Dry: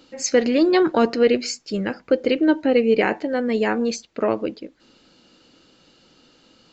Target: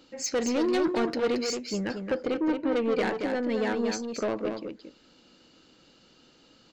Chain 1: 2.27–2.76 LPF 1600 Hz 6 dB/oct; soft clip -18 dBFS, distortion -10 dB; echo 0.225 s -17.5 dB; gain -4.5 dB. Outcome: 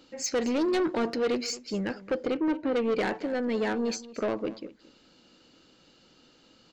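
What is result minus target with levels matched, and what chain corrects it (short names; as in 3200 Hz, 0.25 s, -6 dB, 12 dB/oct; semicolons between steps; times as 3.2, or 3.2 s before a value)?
echo-to-direct -11.5 dB
2.27–2.76 LPF 1600 Hz 6 dB/oct; soft clip -18 dBFS, distortion -10 dB; echo 0.225 s -6 dB; gain -4.5 dB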